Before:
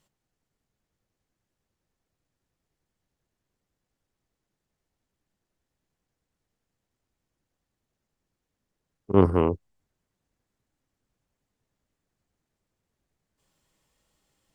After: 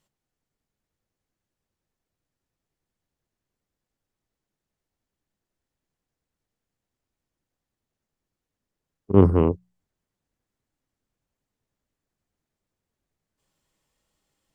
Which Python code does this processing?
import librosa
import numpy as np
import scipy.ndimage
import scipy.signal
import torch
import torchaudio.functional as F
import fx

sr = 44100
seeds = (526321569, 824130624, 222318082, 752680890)

y = fx.hum_notches(x, sr, base_hz=60, count=3)
y = fx.low_shelf(y, sr, hz=420.0, db=9.5, at=(9.1, 9.52))
y = F.gain(torch.from_numpy(y), -3.0).numpy()